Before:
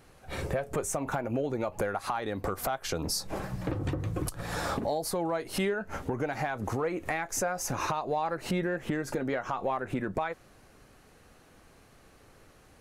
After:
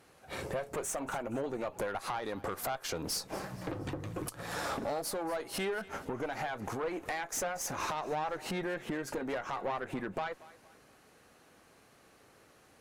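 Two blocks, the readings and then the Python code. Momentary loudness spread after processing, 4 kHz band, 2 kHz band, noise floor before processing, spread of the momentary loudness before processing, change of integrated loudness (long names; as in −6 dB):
5 LU, −2.5 dB, −3.5 dB, −58 dBFS, 4 LU, −4.5 dB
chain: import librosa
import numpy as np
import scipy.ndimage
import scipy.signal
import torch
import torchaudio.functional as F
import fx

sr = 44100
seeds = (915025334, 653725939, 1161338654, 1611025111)

y = fx.highpass(x, sr, hz=220.0, slope=6)
y = fx.tube_stage(y, sr, drive_db=28.0, bias=0.5)
y = fx.echo_thinned(y, sr, ms=234, feedback_pct=39, hz=420.0, wet_db=-18.0)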